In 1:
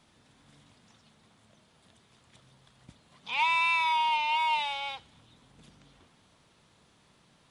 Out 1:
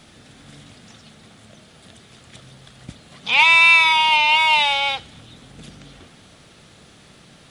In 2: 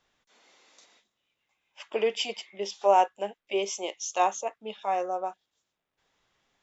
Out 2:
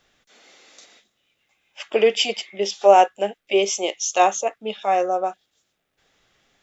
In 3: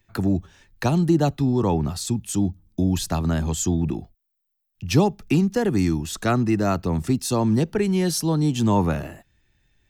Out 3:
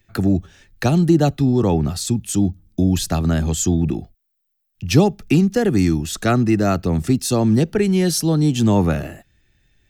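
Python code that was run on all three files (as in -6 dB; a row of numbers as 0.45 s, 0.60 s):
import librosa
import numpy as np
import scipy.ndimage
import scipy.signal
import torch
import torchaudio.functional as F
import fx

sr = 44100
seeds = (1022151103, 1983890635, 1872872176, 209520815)

y = fx.peak_eq(x, sr, hz=980.0, db=-9.5, octaves=0.31)
y = y * 10.0 ** (-1.5 / 20.0) / np.max(np.abs(y))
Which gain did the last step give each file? +16.0 dB, +10.0 dB, +4.5 dB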